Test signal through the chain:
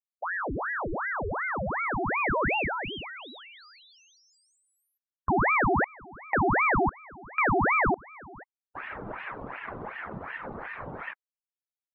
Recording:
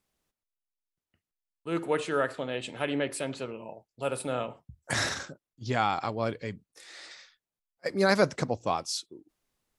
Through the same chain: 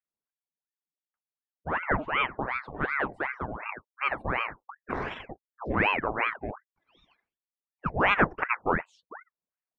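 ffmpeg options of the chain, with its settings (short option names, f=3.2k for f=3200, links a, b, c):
-filter_complex "[0:a]afftdn=nr=25:nf=-41,asplit=2[a][b];[b]acompressor=threshold=-40dB:ratio=8,volume=2dB[c];[a][c]amix=inputs=2:normalize=0,lowpass=f=890:t=q:w=1.9,aeval=exprs='val(0)*sin(2*PI*990*n/s+990*0.85/2.7*sin(2*PI*2.7*n/s))':c=same"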